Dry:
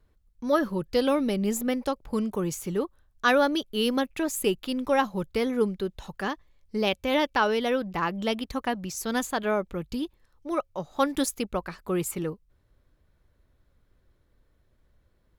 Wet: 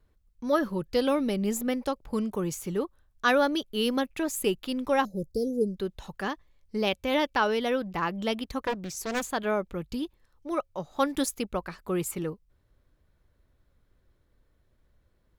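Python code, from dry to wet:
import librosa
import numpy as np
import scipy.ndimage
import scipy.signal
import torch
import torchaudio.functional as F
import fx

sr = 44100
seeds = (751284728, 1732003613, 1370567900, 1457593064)

y = fx.ellip_bandstop(x, sr, low_hz=560.0, high_hz=5000.0, order=3, stop_db=40, at=(5.05, 5.77))
y = fx.doppler_dist(y, sr, depth_ms=0.61, at=(8.6, 9.27))
y = F.gain(torch.from_numpy(y), -1.5).numpy()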